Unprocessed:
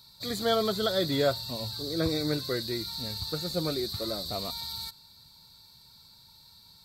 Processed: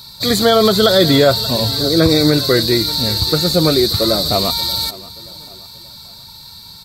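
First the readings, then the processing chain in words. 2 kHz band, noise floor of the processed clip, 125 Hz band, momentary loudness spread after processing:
+16.0 dB, −38 dBFS, +17.0 dB, 16 LU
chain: repeating echo 580 ms, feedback 42%, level −20 dB
boost into a limiter +19 dB
level −1 dB

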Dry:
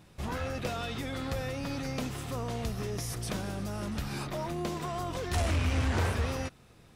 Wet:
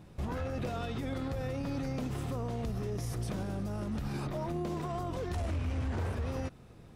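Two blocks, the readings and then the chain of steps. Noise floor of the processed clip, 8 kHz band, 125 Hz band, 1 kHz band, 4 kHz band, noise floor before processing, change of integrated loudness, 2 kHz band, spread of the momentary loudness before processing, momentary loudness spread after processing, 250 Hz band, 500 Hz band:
−53 dBFS, −9.5 dB, −1.5 dB, −4.0 dB, −9.0 dB, −57 dBFS, −2.5 dB, −8.0 dB, 7 LU, 2 LU, −0.5 dB, −2.0 dB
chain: tilt shelving filter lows +5 dB, about 1,100 Hz
downward compressor, threshold −27 dBFS, peak gain reduction 7.5 dB
brickwall limiter −27.5 dBFS, peak gain reduction 6 dB

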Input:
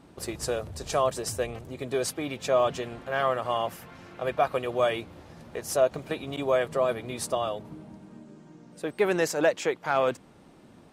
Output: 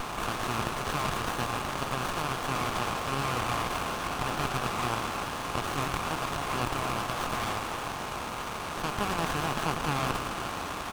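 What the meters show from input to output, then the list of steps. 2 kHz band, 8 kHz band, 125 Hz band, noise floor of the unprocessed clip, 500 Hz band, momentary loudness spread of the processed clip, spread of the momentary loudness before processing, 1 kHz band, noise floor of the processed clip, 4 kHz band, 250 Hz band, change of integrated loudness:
+1.5 dB, −1.0 dB, +4.5 dB, −54 dBFS, −10.0 dB, 5 LU, 16 LU, +2.0 dB, −36 dBFS, +3.5 dB, −0.5 dB, −3.0 dB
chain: compressor on every frequency bin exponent 0.2
Butterworth high-pass 850 Hz 48 dB per octave
echo with shifted repeats 111 ms, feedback 58%, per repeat +41 Hz, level −6 dB
windowed peak hold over 17 samples
level −6 dB

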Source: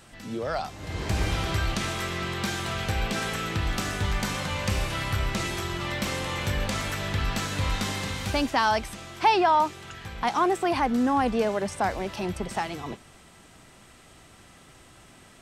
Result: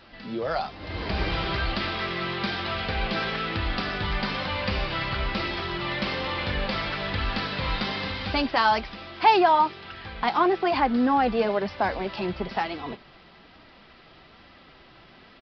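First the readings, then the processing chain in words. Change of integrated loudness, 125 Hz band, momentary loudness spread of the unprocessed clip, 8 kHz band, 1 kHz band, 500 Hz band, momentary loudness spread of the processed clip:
+1.5 dB, −3.0 dB, 8 LU, below −20 dB, +2.0 dB, +2.0 dB, 9 LU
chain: bass and treble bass −4 dB, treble +1 dB
downsampling to 11,025 Hz
flanger 1.1 Hz, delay 3.1 ms, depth 3.1 ms, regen −46%
level +6 dB

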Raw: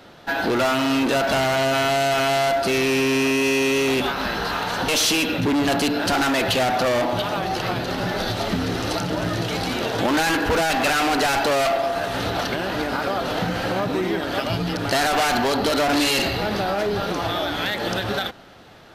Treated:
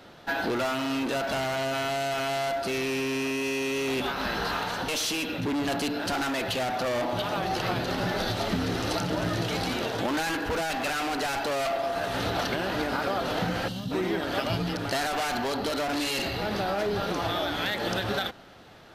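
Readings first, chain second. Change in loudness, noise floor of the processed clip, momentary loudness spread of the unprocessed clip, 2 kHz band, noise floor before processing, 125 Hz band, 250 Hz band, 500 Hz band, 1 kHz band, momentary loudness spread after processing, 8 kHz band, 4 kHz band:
−7.0 dB, −36 dBFS, 5 LU, −7.0 dB, −30 dBFS, −5.5 dB, −7.0 dB, −7.0 dB, −7.0 dB, 1 LU, −8.5 dB, −7.0 dB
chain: speech leveller within 4 dB 0.5 s
gain on a spectral selection 0:13.68–0:13.92, 270–2,700 Hz −16 dB
level −7 dB

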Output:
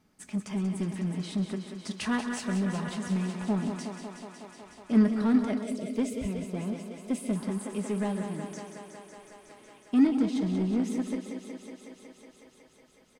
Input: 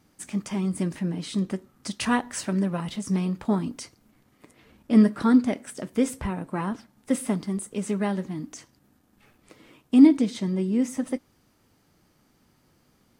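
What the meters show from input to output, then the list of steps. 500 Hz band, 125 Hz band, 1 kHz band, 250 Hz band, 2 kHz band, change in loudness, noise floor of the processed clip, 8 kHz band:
−4.5 dB, −3.0 dB, −6.0 dB, −4.5 dB, −3.5 dB, −5.0 dB, −59 dBFS, −6.0 dB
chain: comb filter 4.7 ms, depth 36%
on a send: feedback echo with a high-pass in the loop 184 ms, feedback 84%, high-pass 190 Hz, level −8 dB
on the sum: gain on a spectral selection 0:05.63–0:07.35, 730–2,000 Hz −14 dB
single-tap delay 134 ms −15 dB
in parallel at −9.5 dB: wave folding −21.5 dBFS
on the sum: high-shelf EQ 8,100 Hz −7 dB
level −7.5 dB

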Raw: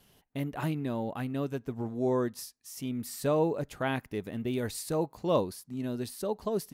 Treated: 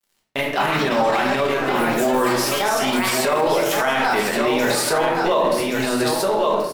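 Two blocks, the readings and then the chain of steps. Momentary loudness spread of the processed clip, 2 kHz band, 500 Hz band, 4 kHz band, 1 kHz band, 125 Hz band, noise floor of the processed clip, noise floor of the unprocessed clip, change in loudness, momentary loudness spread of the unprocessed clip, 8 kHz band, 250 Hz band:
2 LU, +21.5 dB, +12.5 dB, +20.5 dB, +18.5 dB, +3.0 dB, −48 dBFS, −65 dBFS, +13.5 dB, 8 LU, +16.5 dB, +9.0 dB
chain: fade-out on the ending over 0.60 s
high-pass filter 1,300 Hz 12 dB per octave
spectral tilt −4 dB per octave
in parallel at +0.5 dB: downward compressor, threshold −48 dBFS, peak gain reduction 16 dB
on the sum: delay with pitch and tempo change per echo 305 ms, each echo +6 semitones, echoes 3, each echo −6 dB
dead-zone distortion −60 dBFS
on a send: single-tap delay 1,121 ms −8 dB
on the sum: rectangular room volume 160 cubic metres, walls mixed, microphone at 1.2 metres
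boost into a limiter +31.5 dB
level −9 dB

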